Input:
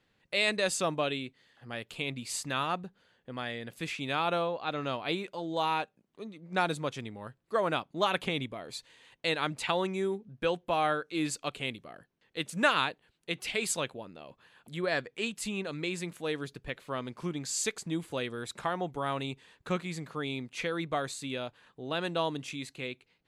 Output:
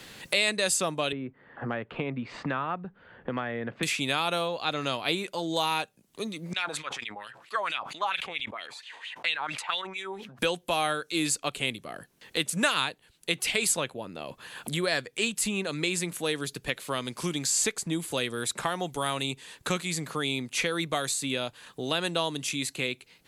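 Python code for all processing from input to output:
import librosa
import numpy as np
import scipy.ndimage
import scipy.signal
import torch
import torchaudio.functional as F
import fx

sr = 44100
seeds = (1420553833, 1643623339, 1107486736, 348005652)

y = fx.chain(x, sr, fx.lowpass(hz=1500.0, slope=24),
    fx.band_squash(depth_pct=70), at=(1.12, 3.83))
y = fx.chain(y, sr, fx.wah_lfo(hz=4.4, low_hz=790.0, high_hz=3200.0, q=3.8),
    fx.sustainer(db_per_s=89.0), at=(6.53, 10.39))
y = fx.peak_eq(y, sr, hz=11000.0, db=14.0, octaves=2.1)
y = fx.band_squash(y, sr, depth_pct=70)
y = y * 10.0 ** (2.0 / 20.0)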